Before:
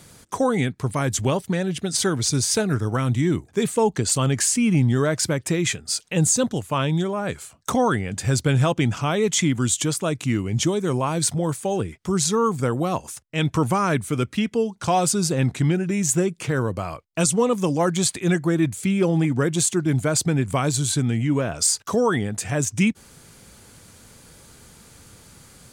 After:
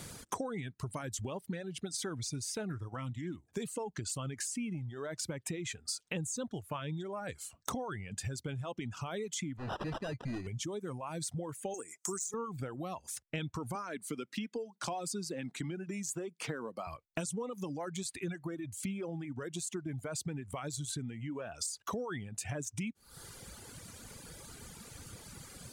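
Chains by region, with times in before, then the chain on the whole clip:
2.92–3.46 s: peaking EQ 420 Hz -9.5 dB 0.24 oct + loudspeaker Doppler distortion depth 0.11 ms
9.57–10.47 s: sample-rate reducer 2.2 kHz + overload inside the chain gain 26 dB + distance through air 91 m
11.74–12.34 s: high-pass 330 Hz + resonant high shelf 5.1 kHz +11.5 dB, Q 3 + short-mantissa float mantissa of 4-bit
13.75–16.87 s: high-pass 170 Hz 24 dB/octave + peaking EQ 4.7 kHz +3.5 dB 0.27 oct
whole clip: peak limiter -14 dBFS; compression 12:1, threshold -36 dBFS; reverb removal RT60 1.9 s; trim +1.5 dB

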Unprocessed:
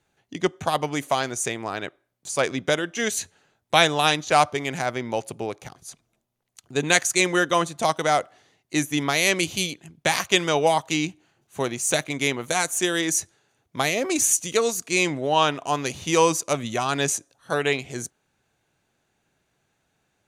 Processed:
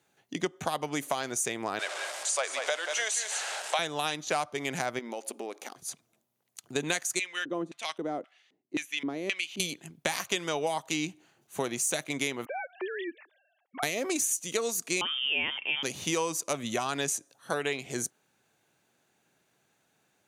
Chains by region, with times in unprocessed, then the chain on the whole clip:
1.79–3.79 s: jump at every zero crossing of -28.5 dBFS + elliptic band-pass 600–8700 Hz, stop band 70 dB + delay 185 ms -9.5 dB
4.99–5.76 s: compression, threshold -32 dBFS + brick-wall FIR high-pass 210 Hz
7.19–9.60 s: treble shelf 6.2 kHz +5 dB + LFO band-pass square 1.9 Hz 290–2600 Hz
12.45–13.83 s: formants replaced by sine waves + compression 2:1, threshold -43 dBFS
15.01–15.83 s: transient shaper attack -1 dB, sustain +4 dB + frequency inversion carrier 3.4 kHz
whole clip: high-pass 150 Hz 12 dB/octave; treble shelf 10 kHz +7.5 dB; compression, threshold -27 dBFS

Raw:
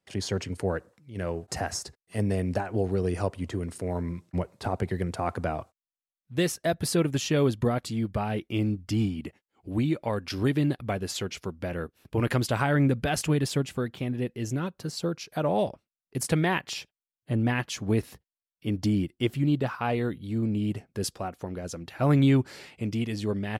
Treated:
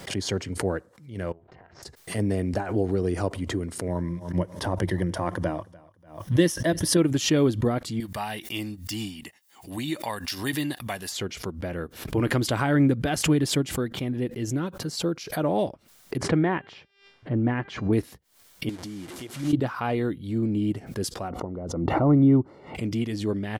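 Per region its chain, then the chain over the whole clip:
1.32–1.83 s: low-pass 3 kHz 24 dB/octave + AM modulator 260 Hz, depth 80% + compression 20:1, threshold -46 dBFS
3.87–6.97 s: rippled EQ curve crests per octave 1.2, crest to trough 8 dB + feedback delay 294 ms, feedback 29%, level -22 dB
8.00–11.12 s: de-esser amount 90% + tilt EQ +4 dB/octave + comb 1.1 ms, depth 40%
16.17–17.93 s: low-pass 1.8 kHz + de-hum 397.4 Hz, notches 29
18.69–19.53 s: one-bit delta coder 64 kbps, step -32 dBFS + high-pass 210 Hz 6 dB/octave + compression 10:1, threshold -34 dBFS
21.30–22.75 s: Savitzky-Golay filter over 65 samples + swell ahead of each attack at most 31 dB/s
whole clip: dynamic bell 310 Hz, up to +7 dB, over -40 dBFS, Q 3.1; band-stop 2.6 kHz, Q 15; swell ahead of each attack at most 110 dB/s

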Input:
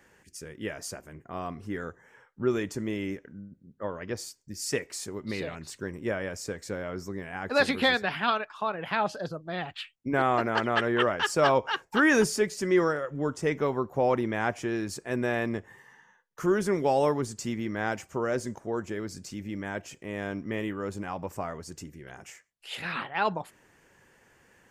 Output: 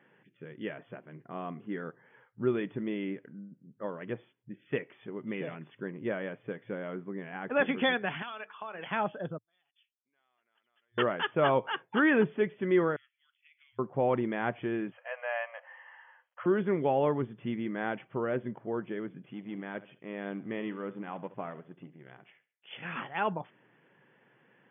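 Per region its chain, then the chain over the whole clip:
8.22–8.87 s: RIAA curve recording + hum notches 50/100/150/200/250/300/350/400/450/500 Hz + compression 16:1, threshold -31 dBFS
9.38–10.98 s: compression 4:1, threshold -31 dBFS + band-pass filter 4.8 kHz, Q 18
12.96–13.79 s: elliptic high-pass 2.4 kHz, stop band 80 dB + compression 16:1, threshold -52 dBFS
14.92–16.46 s: companding laws mixed up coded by mu + brick-wall FIR band-pass 500–3300 Hz
19.33–22.97 s: companding laws mixed up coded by A + feedback delay 70 ms, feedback 36%, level -17 dB
whole clip: FFT band-pass 110–3500 Hz; bass shelf 430 Hz +4 dB; trim -4.5 dB

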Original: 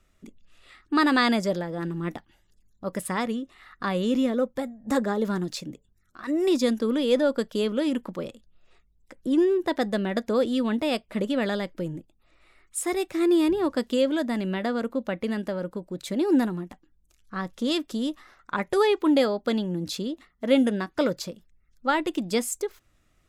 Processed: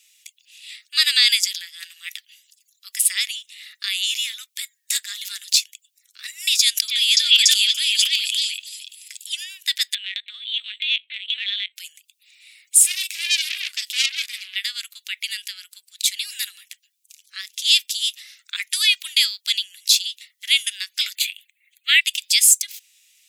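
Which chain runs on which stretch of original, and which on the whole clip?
6.59–9.30 s: repeats whose band climbs or falls 288 ms, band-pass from 2.6 kHz, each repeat 0.7 oct, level -2 dB + decay stretcher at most 49 dB/s
9.94–11.76 s: LPC vocoder at 8 kHz pitch kept + compression, threshold -27 dBFS + treble shelf 3.1 kHz +12 dB
12.77–14.56 s: bass shelf 330 Hz -11 dB + doubling 37 ms -7 dB + transformer saturation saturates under 3.4 kHz
21.15–22.01 s: peaking EQ 2.2 kHz +11 dB 1.6 oct + static phaser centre 2.3 kHz, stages 4
whole clip: steep high-pass 2.4 kHz 36 dB/octave; treble shelf 4.7 kHz +5.5 dB; loudness maximiser +17.5 dB; trim -1 dB

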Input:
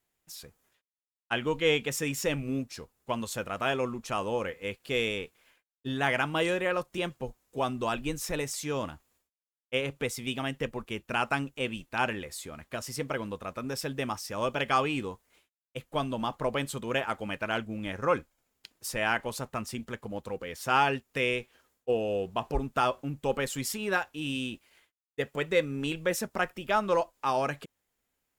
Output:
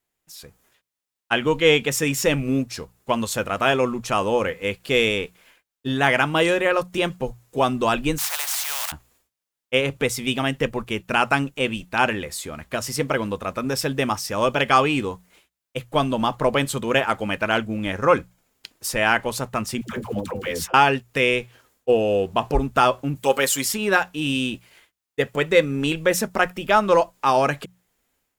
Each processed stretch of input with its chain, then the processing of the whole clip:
8.18–8.92 s: block-companded coder 5-bit + steep high-pass 750 Hz 72 dB/octave + spectrum-flattening compressor 4:1
19.81–20.74 s: block-companded coder 7-bit + compressor with a negative ratio -37 dBFS, ratio -0.5 + phase dispersion lows, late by 91 ms, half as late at 520 Hz
23.15–23.65 s: high-pass 540 Hz 6 dB/octave + treble shelf 6.2 kHz +9 dB + comb 7.5 ms, depth 66%
whole clip: hum notches 60/120/180 Hz; level rider gain up to 10 dB

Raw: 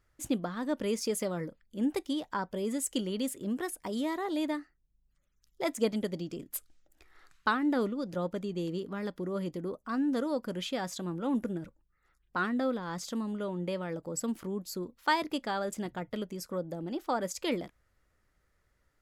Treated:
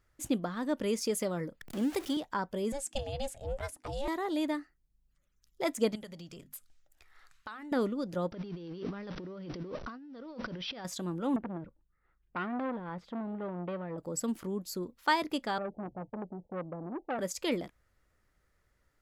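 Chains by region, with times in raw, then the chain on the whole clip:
1.61–2.17 s: jump at every zero crossing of -40.5 dBFS + bass shelf 200 Hz -5.5 dB + three bands compressed up and down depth 40%
2.72–4.08 s: low-pass 9.2 kHz + ring modulator 280 Hz
5.95–7.72 s: peaking EQ 310 Hz -12 dB 1.3 oct + hum notches 50/100/150/200/250 Hz + compression 4:1, threshold -42 dBFS
8.32–10.85 s: jump at every zero crossing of -45.5 dBFS + brick-wall FIR low-pass 6 kHz + compressor with a negative ratio -42 dBFS
11.36–13.98 s: distance through air 480 m + transformer saturation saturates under 870 Hz
15.58–17.19 s: gate -54 dBFS, range -7 dB + Chebyshev low-pass 870 Hz, order 8 + transformer saturation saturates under 950 Hz
whole clip: none

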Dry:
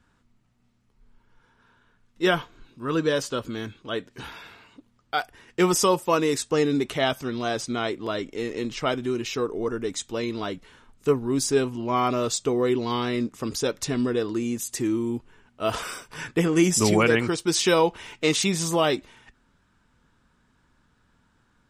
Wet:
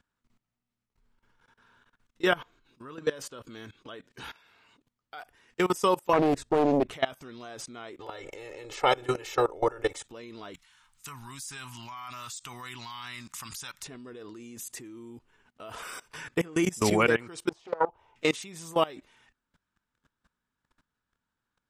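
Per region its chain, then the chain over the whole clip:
6.13–6.91 s: tilt EQ -3.5 dB/octave + loudspeaker Doppler distortion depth 0.84 ms
7.99–10.04 s: spectral peaks clipped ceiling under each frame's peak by 14 dB + peaking EQ 640 Hz +13.5 dB 0.69 oct + comb 2.3 ms, depth 76%
10.54–13.83 s: FFT filter 150 Hz 0 dB, 460 Hz -23 dB, 890 Hz +4 dB, 7.7 kHz +13 dB + compression 2.5:1, threshold -28 dBFS
17.49–18.16 s: FFT filter 100 Hz 0 dB, 210 Hz -13 dB, 590 Hz -1 dB, 870 Hz +2 dB, 1.8 kHz -18 dB, 3 kHz -19 dB, 8.5 kHz -28 dB + loudspeaker Doppler distortion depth 0.35 ms
whole clip: dynamic bell 5 kHz, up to -6 dB, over -41 dBFS, Q 0.82; level held to a coarse grid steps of 21 dB; bass shelf 450 Hz -6.5 dB; trim +2 dB

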